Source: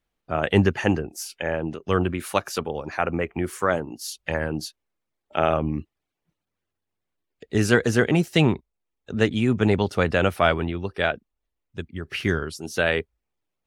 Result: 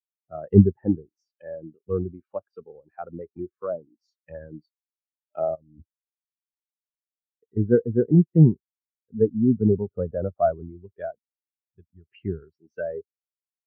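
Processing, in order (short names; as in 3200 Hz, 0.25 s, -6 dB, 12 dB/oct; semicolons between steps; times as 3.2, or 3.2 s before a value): 5.55–7.57 negative-ratio compressor -33 dBFS, ratio -1; treble ducked by the level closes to 1200 Hz, closed at -18.5 dBFS; spectral expander 2.5:1; gain +3.5 dB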